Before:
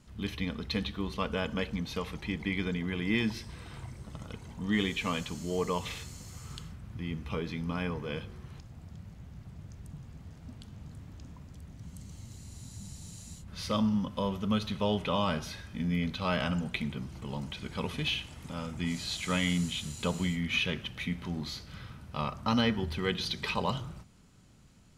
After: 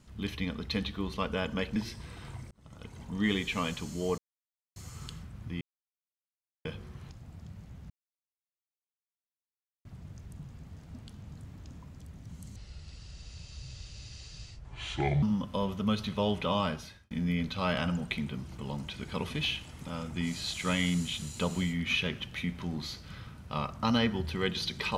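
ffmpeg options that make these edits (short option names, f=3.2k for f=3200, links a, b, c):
-filter_complex "[0:a]asplit=11[a][b][c][d][e][f][g][h][i][j][k];[a]atrim=end=1.762[l];[b]atrim=start=3.248:end=4,asetpts=PTS-STARTPTS,afade=t=out:st=0.748:d=0.004:c=hsin[m];[c]atrim=start=4:end=5.67,asetpts=PTS-STARTPTS,afade=t=in:d=0.5,afade=t=out:st=1.666:d=0.004:c=hsin[n];[d]atrim=start=5.67:end=6.25,asetpts=PTS-STARTPTS,volume=0[o];[e]atrim=start=6.25:end=7.1,asetpts=PTS-STARTPTS,afade=t=in:d=0.004:c=hsin,afade=t=out:st=0.846:d=0.004:c=hsin[p];[f]atrim=start=7.1:end=8.14,asetpts=PTS-STARTPTS,volume=0[q];[g]atrim=start=8.14:end=9.39,asetpts=PTS-STARTPTS,afade=t=in:d=0.004:c=hsin,afade=t=out:st=1.246:d=0.004:c=hsin,apad=pad_dur=1.95[r];[h]atrim=start=9.39:end=12.104,asetpts=PTS-STARTPTS,afade=t=in:d=0.004:c=hsin[s];[i]atrim=start=12.1:end=13.86,asetpts=PTS-STARTPTS,asetrate=29106,aresample=44100[t];[j]atrim=start=13.856:end=15.74,asetpts=PTS-STARTPTS,afade=t=out:st=1.394:d=0.49[u];[k]atrim=start=15.74,asetpts=PTS-STARTPTS,afade=t=in:d=0.004:c=hsin[v];[m][n][o][p][q][r][s]concat=n=7:v=0:a=1[w];[l][w]acrossfade=d=0.004:c1=hsin:c2=hsin[x];[x][t]acrossfade=d=0.004:c1=hsin:c2=hsin[y];[u][v]concat=n=2:v=0:a=1[z];[y][z]acrossfade=d=0.004:c1=hsin:c2=hsin"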